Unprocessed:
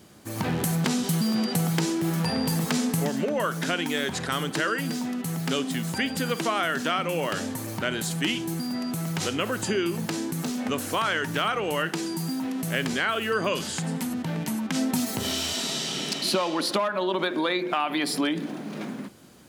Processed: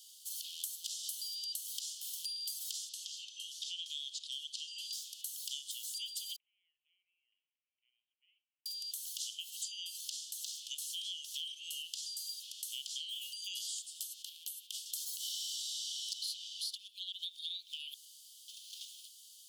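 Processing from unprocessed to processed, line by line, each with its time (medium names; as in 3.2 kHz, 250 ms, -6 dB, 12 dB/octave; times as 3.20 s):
2.89–4.93 s: low-pass 5.5 kHz
6.36–8.66 s: steep low-pass 2 kHz 72 dB/octave
9.50–13.10 s: frequency weighting A
14.29–14.86 s: peaking EQ 6 kHz -9 dB 1.4 oct
17.94–18.48 s: room tone
whole clip: steep high-pass 3 kHz 96 dB/octave; band-stop 3.9 kHz, Q 27; compression 4:1, threshold -43 dBFS; trim +3 dB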